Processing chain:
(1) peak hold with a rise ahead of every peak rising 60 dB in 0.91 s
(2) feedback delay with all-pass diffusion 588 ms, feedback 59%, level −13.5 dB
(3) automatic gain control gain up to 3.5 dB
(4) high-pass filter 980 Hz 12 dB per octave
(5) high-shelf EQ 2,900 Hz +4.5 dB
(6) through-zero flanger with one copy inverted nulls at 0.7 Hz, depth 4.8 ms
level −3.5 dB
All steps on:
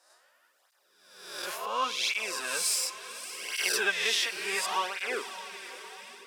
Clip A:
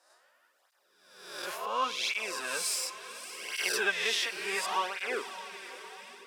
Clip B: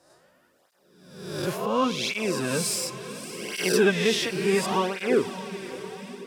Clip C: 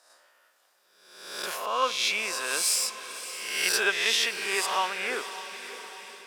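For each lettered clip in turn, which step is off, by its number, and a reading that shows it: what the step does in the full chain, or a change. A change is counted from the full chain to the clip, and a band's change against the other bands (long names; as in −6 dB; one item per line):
5, 8 kHz band −3.5 dB
4, 250 Hz band +21.5 dB
6, change in integrated loudness +3.0 LU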